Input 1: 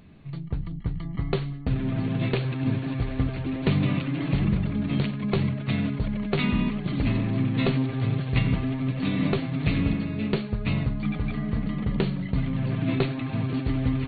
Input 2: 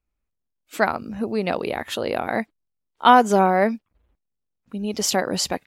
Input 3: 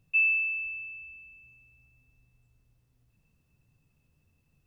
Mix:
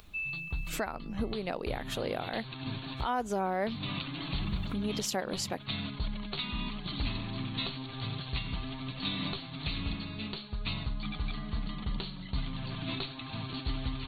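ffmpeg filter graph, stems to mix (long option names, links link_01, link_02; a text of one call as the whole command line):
ffmpeg -i stem1.wav -i stem2.wav -i stem3.wav -filter_complex "[0:a]equalizer=frequency=125:width_type=o:width=1:gain=-10,equalizer=frequency=250:width_type=o:width=1:gain=-7,equalizer=frequency=500:width_type=o:width=1:gain=-11,equalizer=frequency=1000:width_type=o:width=1:gain=3,equalizer=frequency=2000:width_type=o:width=1:gain=-8,equalizer=frequency=4000:width_type=o:width=1:gain=12,volume=-2dB[link_01];[1:a]acompressor=mode=upward:threshold=-24dB:ratio=2.5,volume=-7.5dB,asplit=2[link_02][link_03];[2:a]volume=-12.5dB[link_04];[link_03]apad=whole_len=620786[link_05];[link_01][link_05]sidechaincompress=threshold=-33dB:ratio=8:attack=45:release=243[link_06];[link_06][link_02][link_04]amix=inputs=3:normalize=0,alimiter=limit=-22dB:level=0:latency=1:release=350" out.wav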